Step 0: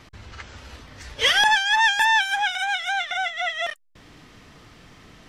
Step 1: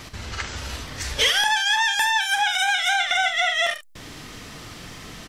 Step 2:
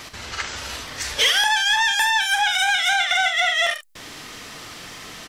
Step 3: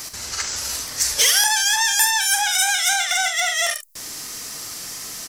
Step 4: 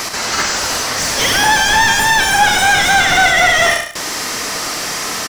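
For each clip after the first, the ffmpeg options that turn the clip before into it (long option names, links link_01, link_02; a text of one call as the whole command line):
ffmpeg -i in.wav -af "highshelf=frequency=5000:gain=10.5,acompressor=threshold=-25dB:ratio=10,aecho=1:1:44|73:0.316|0.237,volume=7.5dB" out.wav
ffmpeg -i in.wav -filter_complex "[0:a]lowshelf=frequency=270:gain=-12,asplit=2[link_01][link_02];[link_02]asoftclip=type=tanh:threshold=-23dB,volume=-5.5dB[link_03];[link_01][link_03]amix=inputs=2:normalize=0" out.wav
ffmpeg -i in.wav -af "aexciter=amount=5:drive=5.5:freq=4700,volume=-2.5dB" out.wav
ffmpeg -i in.wav -filter_complex "[0:a]asplit=2[link_01][link_02];[link_02]highpass=frequency=720:poles=1,volume=29dB,asoftclip=type=tanh:threshold=-1dB[link_03];[link_01][link_03]amix=inputs=2:normalize=0,lowpass=frequency=1100:poles=1,volume=-6dB,aecho=1:1:104|208|312:0.376|0.0789|0.0166,volume=3dB" out.wav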